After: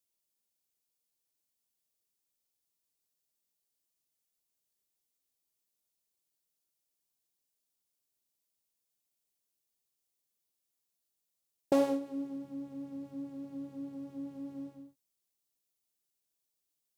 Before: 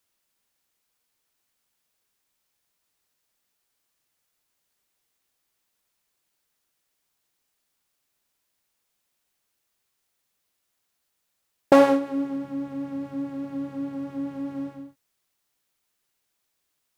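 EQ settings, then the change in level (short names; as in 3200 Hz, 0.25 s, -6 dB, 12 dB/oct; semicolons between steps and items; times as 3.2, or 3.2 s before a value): low shelf 220 Hz -7 dB; bell 1500 Hz -14 dB 2.2 oct; -6.0 dB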